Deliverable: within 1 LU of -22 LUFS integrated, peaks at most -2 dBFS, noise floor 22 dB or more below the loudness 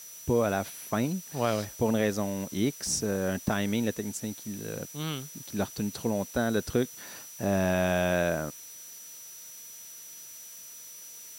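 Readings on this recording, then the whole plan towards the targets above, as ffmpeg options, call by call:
steady tone 5900 Hz; tone level -46 dBFS; noise floor -46 dBFS; noise floor target -52 dBFS; loudness -30.0 LUFS; peak -13.5 dBFS; loudness target -22.0 LUFS
-> -af "bandreject=f=5.9k:w=30"
-af "afftdn=nr=6:nf=-46"
-af "volume=8dB"

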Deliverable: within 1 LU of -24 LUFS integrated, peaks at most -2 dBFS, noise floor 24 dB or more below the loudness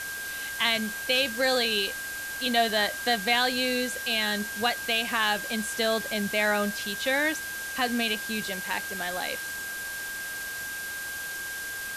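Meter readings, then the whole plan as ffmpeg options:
steady tone 1600 Hz; tone level -34 dBFS; noise floor -35 dBFS; noise floor target -51 dBFS; loudness -27.0 LUFS; peak -10.5 dBFS; loudness target -24.0 LUFS
-> -af "bandreject=f=1.6k:w=30"
-af "afftdn=nr=16:nf=-35"
-af "volume=3dB"

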